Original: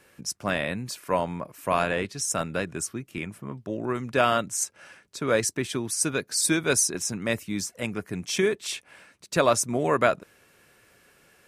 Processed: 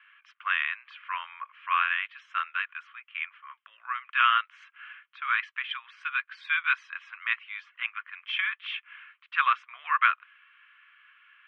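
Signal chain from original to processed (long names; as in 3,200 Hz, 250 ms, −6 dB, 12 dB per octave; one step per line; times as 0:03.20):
Chebyshev band-pass filter 1,100–3,200 Hz, order 4
level +4.5 dB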